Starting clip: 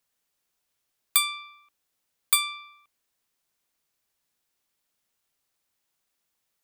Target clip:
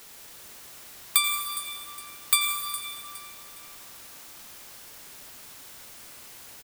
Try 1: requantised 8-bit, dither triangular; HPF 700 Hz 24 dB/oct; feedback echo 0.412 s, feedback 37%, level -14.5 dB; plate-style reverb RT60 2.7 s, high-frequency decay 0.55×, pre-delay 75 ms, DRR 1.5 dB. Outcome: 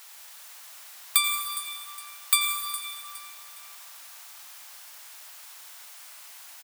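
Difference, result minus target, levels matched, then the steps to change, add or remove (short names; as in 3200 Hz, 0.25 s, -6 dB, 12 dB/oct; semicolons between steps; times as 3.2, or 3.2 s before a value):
500 Hz band -8.0 dB
remove: HPF 700 Hz 24 dB/oct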